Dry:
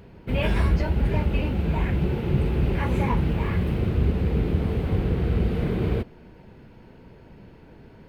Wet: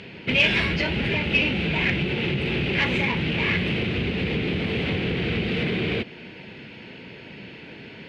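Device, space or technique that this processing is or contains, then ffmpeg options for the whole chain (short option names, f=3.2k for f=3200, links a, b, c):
AM radio: -af "highpass=150,lowpass=3.2k,acompressor=threshold=-28dB:ratio=6,asoftclip=type=tanh:threshold=-25dB,highshelf=f=1.7k:t=q:w=1.5:g=13.5,volume=7.5dB"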